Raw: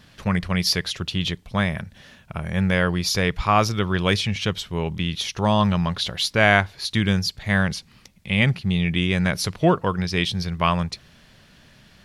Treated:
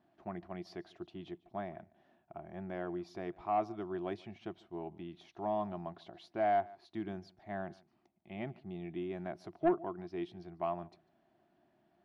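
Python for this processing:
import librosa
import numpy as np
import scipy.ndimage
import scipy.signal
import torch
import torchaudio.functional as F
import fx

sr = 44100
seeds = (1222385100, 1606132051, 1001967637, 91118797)

y = fx.double_bandpass(x, sr, hz=490.0, octaves=0.97)
y = y + 10.0 ** (-23.5 / 20.0) * np.pad(y, (int(147 * sr / 1000.0), 0))[:len(y)]
y = 10.0 ** (-15.5 / 20.0) * np.tanh(y / 10.0 ** (-15.5 / 20.0))
y = F.gain(torch.from_numpy(y), -5.0).numpy()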